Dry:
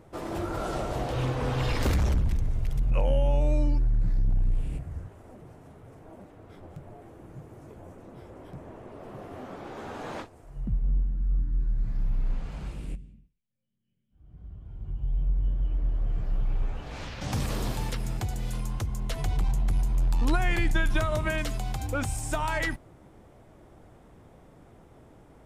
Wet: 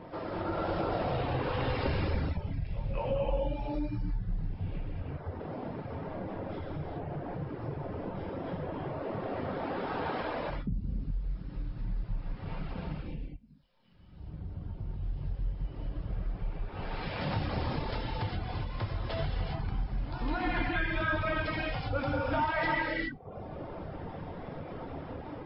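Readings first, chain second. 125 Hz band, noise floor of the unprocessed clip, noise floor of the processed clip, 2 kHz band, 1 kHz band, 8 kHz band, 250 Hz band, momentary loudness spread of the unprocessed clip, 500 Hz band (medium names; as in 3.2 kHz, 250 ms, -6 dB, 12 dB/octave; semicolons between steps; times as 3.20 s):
-4.5 dB, -55 dBFS, -45 dBFS, 0.0 dB, +1.5 dB, under -35 dB, -0.5 dB, 21 LU, +0.5 dB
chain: companding laws mixed up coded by mu; low-pass 2.6 kHz 6 dB/octave; hum notches 60/120/180 Hz; level rider gain up to 10 dB; reverb removal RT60 1.5 s; feedback comb 180 Hz, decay 0.21 s, harmonics odd, mix 60%; pre-echo 208 ms -14.5 dB; gated-style reverb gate 440 ms flat, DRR -6 dB; reverb removal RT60 0.53 s; compression 2:1, threshold -40 dBFS, peak gain reduction 15 dB; bass shelf 98 Hz -5.5 dB; trim +4.5 dB; MP3 24 kbps 12 kHz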